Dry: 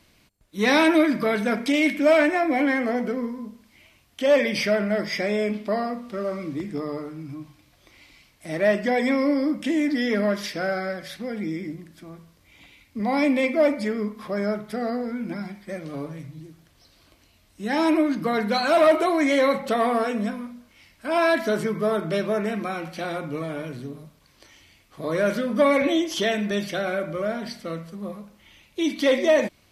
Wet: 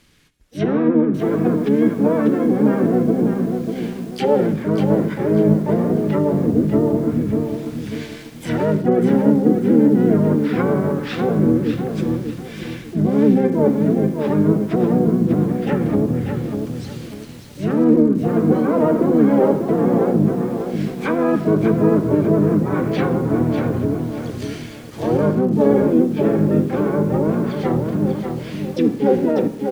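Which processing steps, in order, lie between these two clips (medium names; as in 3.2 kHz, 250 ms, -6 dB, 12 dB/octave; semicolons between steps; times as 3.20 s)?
high-order bell 820 Hz -9 dB 1 oct; feedback echo behind a high-pass 344 ms, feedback 49%, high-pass 5.1 kHz, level -22 dB; dynamic bell 1.5 kHz, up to +3 dB, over -40 dBFS, Q 3.5; harmony voices -12 st -13 dB, -5 st -1 dB, +7 st -5 dB; level rider gain up to 11.5 dB; low-pass that closes with the level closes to 580 Hz, closed at -14 dBFS; de-hum 133.6 Hz, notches 31; on a send at -17 dB: reverberation RT60 1.1 s, pre-delay 45 ms; on the sum: bit-crushed delay 593 ms, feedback 35%, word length 7-bit, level -6 dB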